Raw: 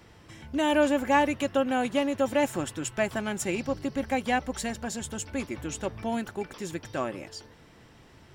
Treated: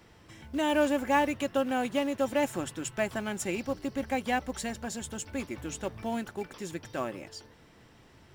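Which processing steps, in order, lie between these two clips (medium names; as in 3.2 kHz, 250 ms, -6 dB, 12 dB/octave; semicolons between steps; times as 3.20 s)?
in parallel at -4 dB: short-mantissa float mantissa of 2-bit; on the sum: hum notches 50/100/150 Hz; trim -7 dB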